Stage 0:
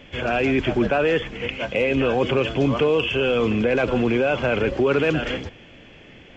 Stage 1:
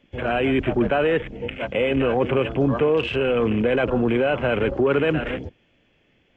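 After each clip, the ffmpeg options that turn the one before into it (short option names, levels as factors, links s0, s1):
-filter_complex "[0:a]acrossover=split=3100[s0][s1];[s1]acompressor=threshold=0.0112:ratio=4:attack=1:release=60[s2];[s0][s2]amix=inputs=2:normalize=0,afwtdn=0.0316"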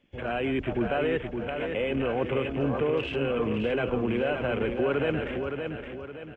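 -af "aecho=1:1:567|1134|1701|2268|2835:0.501|0.205|0.0842|0.0345|0.0142,volume=0.422"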